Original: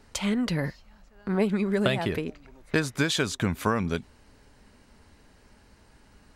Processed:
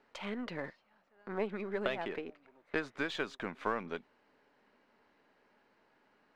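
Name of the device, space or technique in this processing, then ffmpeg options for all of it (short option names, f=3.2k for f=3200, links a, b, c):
crystal radio: -af "highpass=340,lowpass=2.6k,aeval=exprs='if(lt(val(0),0),0.708*val(0),val(0))':c=same,volume=-6dB"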